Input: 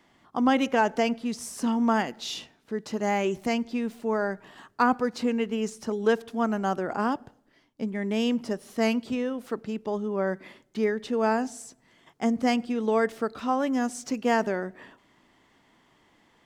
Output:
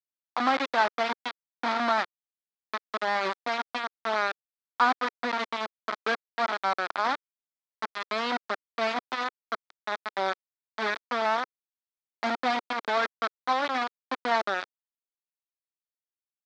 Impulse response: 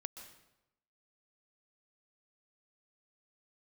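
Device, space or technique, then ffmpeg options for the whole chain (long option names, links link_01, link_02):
hand-held game console: -af "acrusher=bits=3:mix=0:aa=0.000001,highpass=440,equalizer=frequency=450:width_type=q:width=4:gain=-9,equalizer=frequency=1300:width_type=q:width=4:gain=4,equalizer=frequency=2800:width_type=q:width=4:gain=-9,lowpass=frequency=4100:width=0.5412,lowpass=frequency=4100:width=1.3066"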